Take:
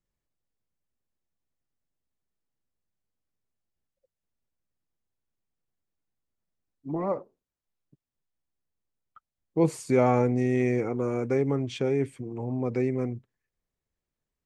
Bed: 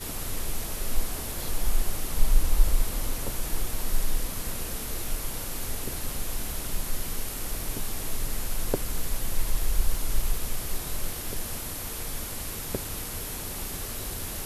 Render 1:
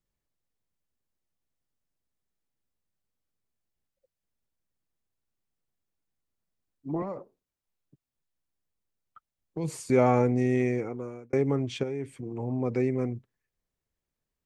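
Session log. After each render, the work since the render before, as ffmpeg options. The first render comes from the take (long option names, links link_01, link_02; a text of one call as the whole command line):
ffmpeg -i in.wav -filter_complex "[0:a]asettb=1/sr,asplit=3[link_01][link_02][link_03];[link_01]atrim=end=7.024[link_04];[link_02]atrim=start=7.02:end=9.9,asetpts=PTS-STARTPTS,afade=type=in:duration=0.004:curve=qsin,afade=type=out:start_time=2.876:duration=0.004:curve=qsin,acrossover=split=150|3000[link_05][link_06][link_07];[link_06]acompressor=threshold=-32dB:ratio=6:attack=3.2:release=140:knee=2.83:detection=peak[link_08];[link_05][link_08][link_07]amix=inputs=3:normalize=0[link_09];[link_03]atrim=start=9.896[link_10];[link_04][link_09]acrossfade=duration=0.004:curve1=hsin:curve2=qsin[link_11];[link_11][link_10]acrossfade=duration=0.004:curve1=qsin:curve2=hsin,asettb=1/sr,asplit=3[link_12][link_13][link_14];[link_12]atrim=end=11.834[link_15];[link_13]atrim=start=11.83:end=12.23,asetpts=PTS-STARTPTS,afade=type=in:duration=0.004:curve=qsin,afade=type=out:start_time=0.396:duration=0.004:curve=qsin,acompressor=threshold=-35dB:ratio=2:attack=3.2:release=140:knee=1:detection=peak[link_16];[link_14]atrim=start=12.226[link_17];[link_15][link_16]acrossfade=duration=0.004:curve1=hsin:curve2=qsin[link_18];[link_18][link_17]acrossfade=duration=0.004:curve1=qsin:curve2=hsin,asplit=2[link_19][link_20];[link_19]atrim=end=11.33,asetpts=PTS-STARTPTS,afade=type=out:start_time=10.53:duration=0.8[link_21];[link_20]atrim=start=11.33,asetpts=PTS-STARTPTS,afade=type=in:duration=0.004:curve=hsin[link_22];[link_21][link_22]concat=n=2:v=0:a=1" out.wav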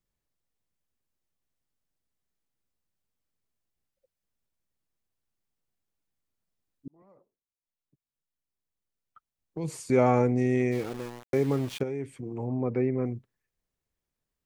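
ffmpeg -i in.wav -filter_complex "[0:a]asplit=3[link_01][link_02][link_03];[link_01]afade=type=out:start_time=10.71:duration=0.02[link_04];[link_02]aeval=exprs='val(0)*gte(abs(val(0)),0.0126)':channel_layout=same,afade=type=in:start_time=10.71:duration=0.02,afade=type=out:start_time=11.8:duration=0.02[link_05];[link_03]afade=type=in:start_time=11.8:duration=0.02[link_06];[link_04][link_05][link_06]amix=inputs=3:normalize=0,asettb=1/sr,asplit=3[link_07][link_08][link_09];[link_07]atrim=end=12.474[link_10];[link_08]atrim=start=12.47:end=13.06,asetpts=PTS-STARTPTS,afade=type=in:duration=0.004:curve=qsin,afade=type=out:start_time=0.586:duration=0.004:curve=qsin,lowpass=2200[link_11];[link_09]atrim=start=13.056[link_12];[link_10][link_11]acrossfade=duration=0.004:curve1=hsin:curve2=qsin[link_13];[link_13][link_12]acrossfade=duration=0.004:curve1=qsin:curve2=hsin,asplit=2[link_14][link_15];[link_14]atrim=end=6.88,asetpts=PTS-STARTPTS,afade=type=out:start_time=6.876:duration=0.004:curve=hsin[link_16];[link_15]atrim=start=6.88,asetpts=PTS-STARTPTS,afade=type=in:duration=3.21[link_17];[link_16][link_17]concat=n=2:v=0:a=1" out.wav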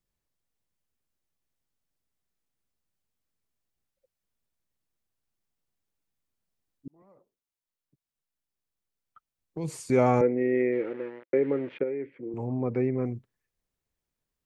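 ffmpeg -i in.wav -filter_complex "[0:a]asettb=1/sr,asplit=3[link_01][link_02][link_03];[link_01]atrim=end=10.214[link_04];[link_02]atrim=start=10.21:end=12.34,asetpts=PTS-STARTPTS,afade=type=in:duration=0.004:curve=qsin,afade=type=out:start_time=2.126:duration=0.004:curve=qsin,highpass=270,equalizer=frequency=340:width_type=q:width=4:gain=5,equalizer=frequency=520:width_type=q:width=4:gain=7,equalizer=frequency=750:width_type=q:width=4:gain=-9,equalizer=frequency=1100:width_type=q:width=4:gain=-8,equalizer=frequency=2000:width_type=q:width=4:gain=4,lowpass=frequency=2300:width=0.5412,lowpass=frequency=2300:width=1.3066[link_05];[link_03]atrim=start=12.336[link_06];[link_04][link_05]acrossfade=duration=0.004:curve1=hsin:curve2=qsin[link_07];[link_07][link_06]acrossfade=duration=0.004:curve1=qsin:curve2=hsin" out.wav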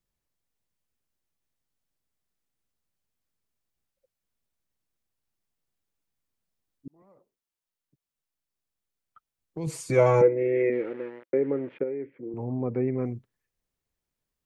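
ffmpeg -i in.wav -filter_complex "[0:a]asettb=1/sr,asplit=3[link_01][link_02][link_03];[link_01]atrim=end=9.664[link_04];[link_02]atrim=start=9.66:end=10.7,asetpts=PTS-STARTPTS,afade=type=in:duration=0.004:curve=qsin,afade=type=out:start_time=1.036:duration=0.004:curve=qsin,aecho=1:1:6.1:0.88,atrim=end_sample=45864[link_05];[link_03]atrim=start=10.696[link_06];[link_04][link_05]acrossfade=duration=0.004:curve1=hsin:curve2=qsin[link_07];[link_07][link_06]acrossfade=duration=0.004:curve1=qsin:curve2=hsin,asettb=1/sr,asplit=3[link_08][link_09][link_10];[link_08]atrim=end=11.314[link_11];[link_09]atrim=start=11.31:end=12.88,asetpts=PTS-STARTPTS,afade=type=in:duration=0.004:curve=qsin,afade=type=out:start_time=1.566:duration=0.004:curve=qsin,equalizer=frequency=5100:width=0.5:gain=-11[link_12];[link_10]atrim=start=12.876[link_13];[link_11][link_12]acrossfade=duration=0.004:curve1=hsin:curve2=qsin[link_14];[link_14][link_13]acrossfade=duration=0.004:curve1=qsin:curve2=hsin" out.wav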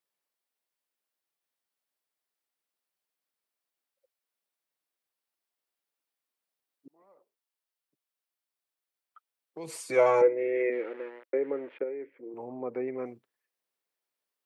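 ffmpeg -i in.wav -af "highpass=460,equalizer=frequency=6700:width=3.1:gain=-5" out.wav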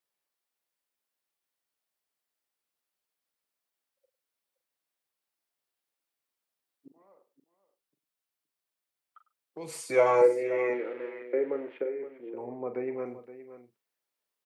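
ffmpeg -i in.wav -filter_complex "[0:a]asplit=2[link_01][link_02];[link_02]adelay=41,volume=-10dB[link_03];[link_01][link_03]amix=inputs=2:normalize=0,aecho=1:1:101|520:0.126|0.2" out.wav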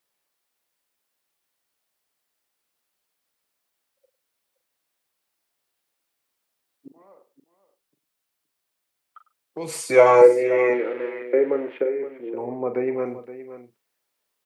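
ffmpeg -i in.wav -af "volume=9dB" out.wav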